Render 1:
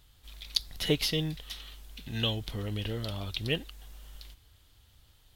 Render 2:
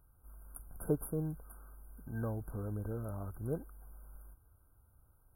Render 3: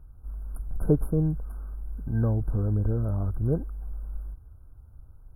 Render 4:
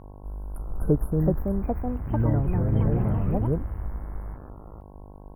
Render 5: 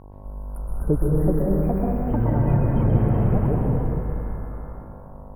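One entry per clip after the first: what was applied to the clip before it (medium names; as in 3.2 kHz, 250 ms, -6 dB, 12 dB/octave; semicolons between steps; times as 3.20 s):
FFT band-reject 1.6–9.1 kHz; trim -4.5 dB
tilt EQ -3 dB/octave; trim +5 dB
mains buzz 50 Hz, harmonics 22, -46 dBFS -4 dB/octave; ever faster or slower copies 563 ms, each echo +4 st, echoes 3
plate-style reverb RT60 2.6 s, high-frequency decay 0.8×, pre-delay 110 ms, DRR -2.5 dB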